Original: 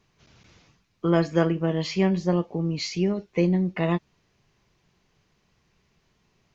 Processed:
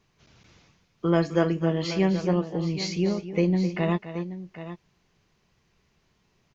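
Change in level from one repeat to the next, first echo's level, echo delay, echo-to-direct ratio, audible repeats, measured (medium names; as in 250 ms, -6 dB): no regular repeats, -12.5 dB, 259 ms, -9.5 dB, 2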